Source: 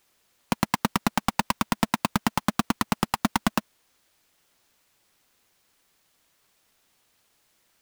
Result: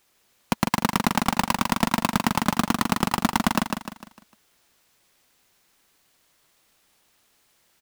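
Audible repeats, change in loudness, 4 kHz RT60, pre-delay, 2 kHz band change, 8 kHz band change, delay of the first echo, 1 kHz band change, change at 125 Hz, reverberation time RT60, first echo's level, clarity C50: 4, +3.0 dB, no reverb, no reverb, +3.0 dB, +3.0 dB, 151 ms, +3.0 dB, +3.0 dB, no reverb, -4.5 dB, no reverb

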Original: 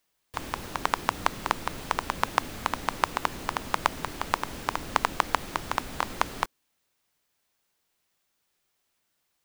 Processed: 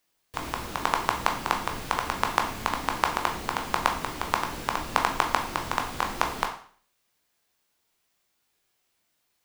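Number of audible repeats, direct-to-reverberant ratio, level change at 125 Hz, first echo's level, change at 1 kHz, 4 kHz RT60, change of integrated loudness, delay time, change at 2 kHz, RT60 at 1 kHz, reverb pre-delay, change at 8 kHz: no echo, 2.0 dB, +1.5 dB, no echo, +2.0 dB, 0.50 s, +2.0 dB, no echo, +2.0 dB, 0.45 s, 14 ms, +2.0 dB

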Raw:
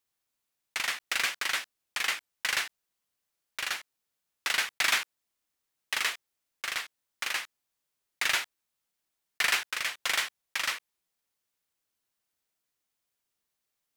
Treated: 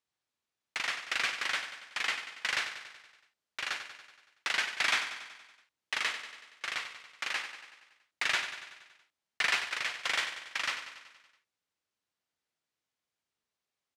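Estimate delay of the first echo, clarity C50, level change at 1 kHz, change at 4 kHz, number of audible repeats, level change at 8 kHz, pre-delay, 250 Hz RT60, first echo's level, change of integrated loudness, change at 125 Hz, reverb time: 94 ms, no reverb, -1.0 dB, -2.5 dB, 6, -7.0 dB, no reverb, no reverb, -10.0 dB, -2.5 dB, no reading, no reverb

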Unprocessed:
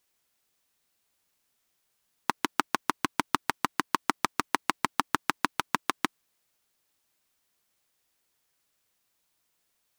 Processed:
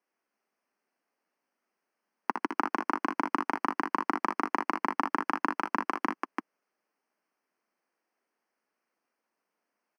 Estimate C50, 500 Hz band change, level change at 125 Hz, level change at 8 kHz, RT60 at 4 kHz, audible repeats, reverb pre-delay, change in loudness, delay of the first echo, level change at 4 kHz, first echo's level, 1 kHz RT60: no reverb, +2.0 dB, no reading, under -15 dB, no reverb, 2, no reverb, -0.5 dB, 60 ms, -13.5 dB, -7.0 dB, no reverb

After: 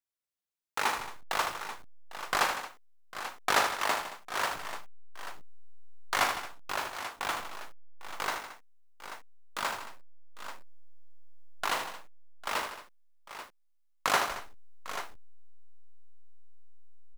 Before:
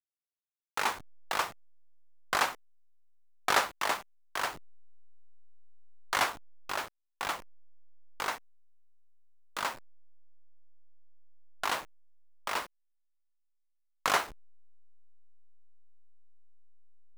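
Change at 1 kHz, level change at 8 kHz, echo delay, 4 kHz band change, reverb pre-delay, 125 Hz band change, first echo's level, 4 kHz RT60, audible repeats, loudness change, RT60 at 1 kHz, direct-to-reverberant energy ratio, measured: +1.5 dB, +1.5 dB, 41 ms, +1.5 dB, no reverb, +2.0 dB, -9.5 dB, no reverb, 6, +0.5 dB, no reverb, no reverb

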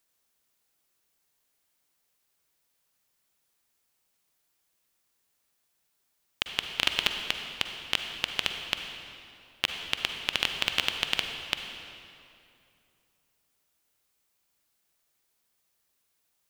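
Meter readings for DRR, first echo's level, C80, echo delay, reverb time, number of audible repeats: 5.0 dB, no echo, 6.0 dB, no echo, 2.7 s, no echo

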